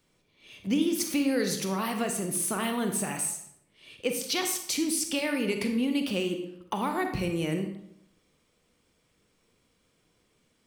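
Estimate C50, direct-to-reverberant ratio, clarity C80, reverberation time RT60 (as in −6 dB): 7.0 dB, 5.0 dB, 9.5 dB, 0.75 s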